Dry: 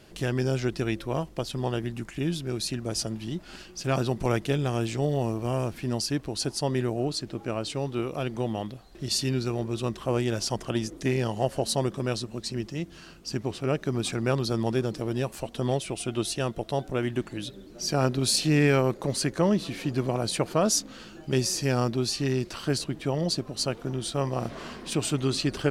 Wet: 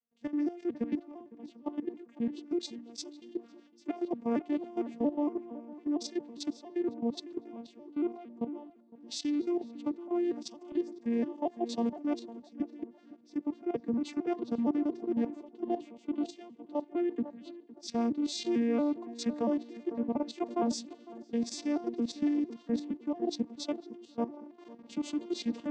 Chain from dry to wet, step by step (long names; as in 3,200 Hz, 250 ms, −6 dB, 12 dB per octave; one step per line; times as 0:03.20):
vocoder with an arpeggio as carrier major triad, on A#3, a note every 229 ms
dynamic equaliser 1,400 Hz, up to −8 dB, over −60 dBFS, Q 5.9
output level in coarse steps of 14 dB
tape delay 507 ms, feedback 47%, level −9.5 dB, low-pass 1,700 Hz
multiband upward and downward expander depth 70%
level −1 dB